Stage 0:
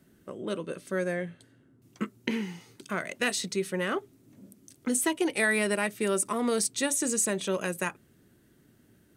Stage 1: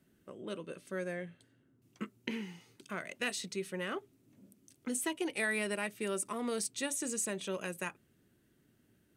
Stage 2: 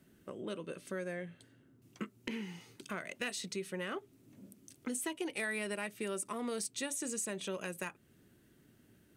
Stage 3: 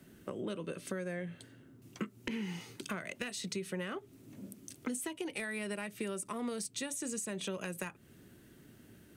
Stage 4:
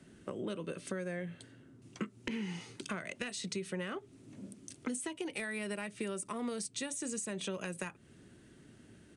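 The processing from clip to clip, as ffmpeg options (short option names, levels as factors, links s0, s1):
-af "equalizer=f=2700:t=o:w=0.59:g=3.5,volume=0.376"
-af "acompressor=threshold=0.00501:ratio=2,volume=39.8,asoftclip=hard,volume=0.0251,volume=1.78"
-filter_complex "[0:a]acrossover=split=170[s0][s1];[s1]acompressor=threshold=0.00631:ratio=6[s2];[s0][s2]amix=inputs=2:normalize=0,volume=2.24"
-af "aresample=22050,aresample=44100"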